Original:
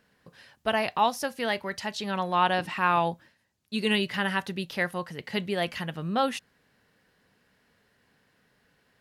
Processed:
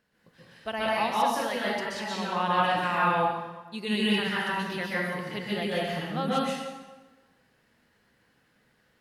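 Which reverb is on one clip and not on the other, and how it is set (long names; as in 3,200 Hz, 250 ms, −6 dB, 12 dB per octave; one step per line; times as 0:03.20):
dense smooth reverb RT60 1.2 s, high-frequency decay 0.8×, pre-delay 115 ms, DRR −7 dB
level −7.5 dB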